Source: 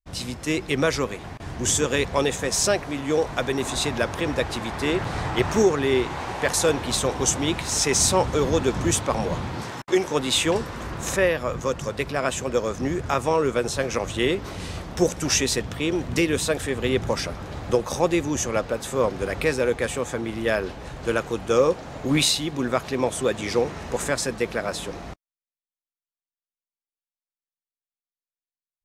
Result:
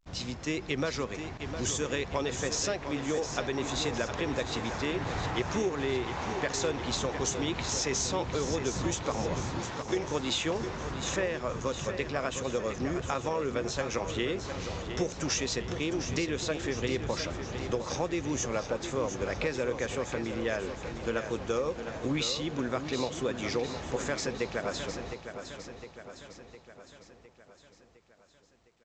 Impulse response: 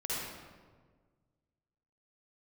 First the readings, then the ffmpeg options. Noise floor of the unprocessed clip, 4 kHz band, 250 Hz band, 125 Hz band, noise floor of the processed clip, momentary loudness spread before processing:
under -85 dBFS, -7.5 dB, -7.5 dB, -7.0 dB, -58 dBFS, 8 LU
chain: -af "acompressor=threshold=-22dB:ratio=6,aecho=1:1:709|1418|2127|2836|3545|4254:0.355|0.195|0.107|0.059|0.0325|0.0179,volume=-5dB" -ar 16000 -c:a pcm_alaw

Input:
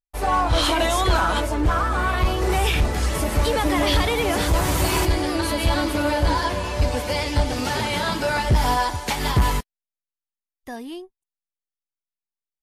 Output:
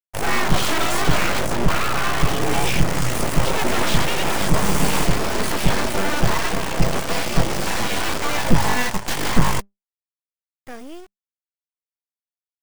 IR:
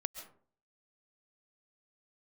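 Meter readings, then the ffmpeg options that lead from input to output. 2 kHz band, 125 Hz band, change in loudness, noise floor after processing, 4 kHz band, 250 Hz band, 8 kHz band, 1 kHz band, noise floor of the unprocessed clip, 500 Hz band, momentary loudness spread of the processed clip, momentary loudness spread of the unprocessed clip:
+2.0 dB, -0.5 dB, 0.0 dB, under -85 dBFS, +0.5 dB, +1.5 dB, +4.0 dB, -1.0 dB, under -85 dBFS, -1.0 dB, 4 LU, 5 LU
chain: -af "acrusher=bits=5:dc=4:mix=0:aa=0.000001,equalizer=f=100:t=o:w=0.33:g=11,equalizer=f=4k:t=o:w=0.33:g=-7,equalizer=f=12.5k:t=o:w=0.33:g=-11,aeval=exprs='abs(val(0))':c=same,volume=2.5dB"

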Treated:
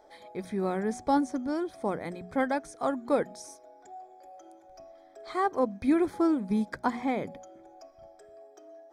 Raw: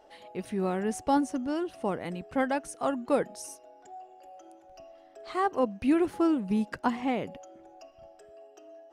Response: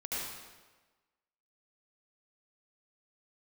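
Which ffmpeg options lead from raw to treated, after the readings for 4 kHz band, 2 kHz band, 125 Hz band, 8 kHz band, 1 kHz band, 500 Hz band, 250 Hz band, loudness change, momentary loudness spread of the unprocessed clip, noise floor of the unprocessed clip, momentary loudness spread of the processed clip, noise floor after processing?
-3.0 dB, 0.0 dB, -1.0 dB, -4.0 dB, 0.0 dB, 0.0 dB, 0.0 dB, 0.0 dB, 20 LU, -57 dBFS, 20 LU, -56 dBFS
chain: -filter_complex "[0:a]acrossover=split=7200[a][b];[b]acompressor=threshold=-55dB:ratio=4:attack=1:release=60[c];[a][c]amix=inputs=2:normalize=0,asuperstop=centerf=2800:order=8:qfactor=4.8,bandreject=f=60:t=h:w=6,bandreject=f=120:t=h:w=6,bandreject=f=180:t=h:w=6,bandreject=f=240:t=h:w=6"

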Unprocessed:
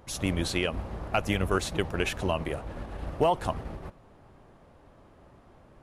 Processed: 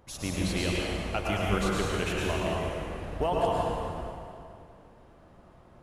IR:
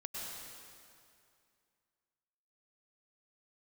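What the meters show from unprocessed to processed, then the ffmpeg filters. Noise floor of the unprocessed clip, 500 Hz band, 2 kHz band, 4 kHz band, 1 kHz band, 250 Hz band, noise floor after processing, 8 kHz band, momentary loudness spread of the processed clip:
-56 dBFS, +0.5 dB, -0.5 dB, 0.0 dB, +0.5 dB, +0.5 dB, -56 dBFS, 0.0 dB, 12 LU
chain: -filter_complex "[1:a]atrim=start_sample=2205[a];[0:a][a]afir=irnorm=-1:irlink=0"

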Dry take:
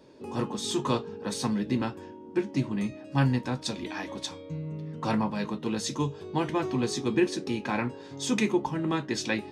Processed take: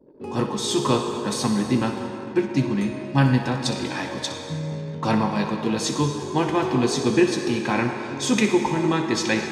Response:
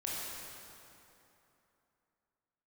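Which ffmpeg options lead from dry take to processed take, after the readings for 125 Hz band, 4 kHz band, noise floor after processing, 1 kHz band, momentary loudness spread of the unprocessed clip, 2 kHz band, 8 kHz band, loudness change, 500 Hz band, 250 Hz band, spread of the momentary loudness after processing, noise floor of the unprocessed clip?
+6.5 dB, +7.0 dB, -34 dBFS, +7.5 dB, 9 LU, +7.5 dB, +7.0 dB, +7.0 dB, +7.0 dB, +6.5 dB, 8 LU, -45 dBFS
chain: -filter_complex "[0:a]asplit=2[a][b];[1:a]atrim=start_sample=2205,lowshelf=f=140:g=-9.5,adelay=63[c];[b][c]afir=irnorm=-1:irlink=0,volume=-7.5dB[d];[a][d]amix=inputs=2:normalize=0,anlmdn=0.00398,volume=6dB"

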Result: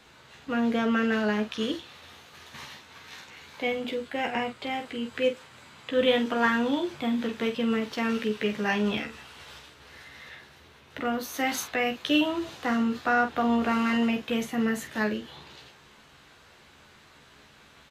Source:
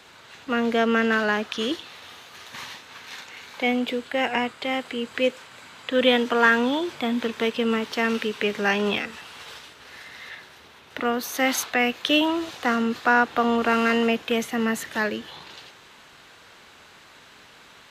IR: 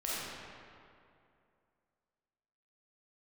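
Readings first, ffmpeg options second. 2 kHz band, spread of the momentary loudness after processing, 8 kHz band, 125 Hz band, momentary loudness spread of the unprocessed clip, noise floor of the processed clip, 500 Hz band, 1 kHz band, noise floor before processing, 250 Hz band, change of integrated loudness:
-6.5 dB, 20 LU, -6.0 dB, +0.5 dB, 20 LU, -55 dBFS, -4.5 dB, -5.0 dB, -50 dBFS, -1.5 dB, -4.0 dB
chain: -af "lowshelf=f=250:g=9,aecho=1:1:14|47:0.562|0.355,volume=-7.5dB"

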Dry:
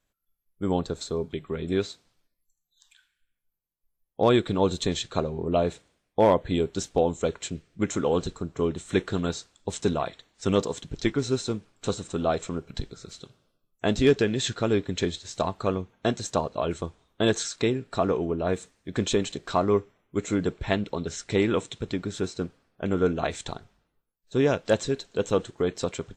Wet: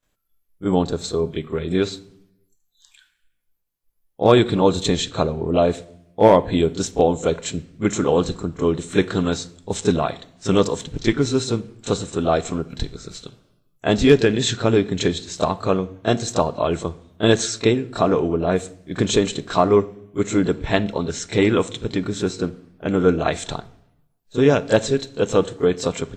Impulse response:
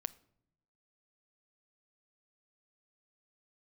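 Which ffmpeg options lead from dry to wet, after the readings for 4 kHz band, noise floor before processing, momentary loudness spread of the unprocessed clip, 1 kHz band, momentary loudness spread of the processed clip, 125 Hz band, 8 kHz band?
+6.5 dB, -81 dBFS, 11 LU, +6.5 dB, 12 LU, +6.5 dB, +6.5 dB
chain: -filter_complex "[0:a]asplit=2[a][b];[1:a]atrim=start_sample=2205,adelay=27[c];[b][c]afir=irnorm=-1:irlink=0,volume=13dB[d];[a][d]amix=inputs=2:normalize=0,volume=-5dB"

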